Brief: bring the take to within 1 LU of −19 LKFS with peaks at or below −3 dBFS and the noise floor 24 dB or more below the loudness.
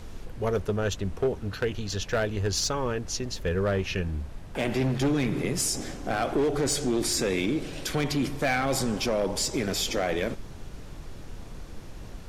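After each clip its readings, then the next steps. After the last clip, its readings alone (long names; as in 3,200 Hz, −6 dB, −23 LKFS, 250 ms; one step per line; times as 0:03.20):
share of clipped samples 1.6%; peaks flattened at −19.5 dBFS; background noise floor −42 dBFS; target noise floor −52 dBFS; integrated loudness −28.0 LKFS; sample peak −19.5 dBFS; target loudness −19.0 LKFS
→ clipped peaks rebuilt −19.5 dBFS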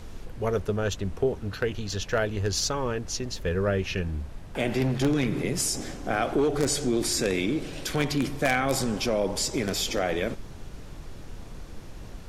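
share of clipped samples 0.0%; background noise floor −42 dBFS; target noise floor −52 dBFS
→ noise reduction from a noise print 10 dB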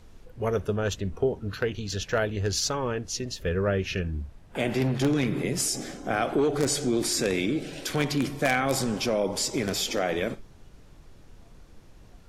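background noise floor −52 dBFS; integrated loudness −27.5 LKFS; sample peak −10.5 dBFS; target loudness −19.0 LKFS
→ level +8.5 dB
brickwall limiter −3 dBFS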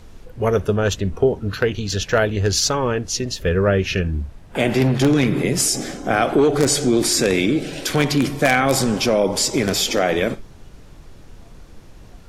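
integrated loudness −19.0 LKFS; sample peak −3.0 dBFS; background noise floor −43 dBFS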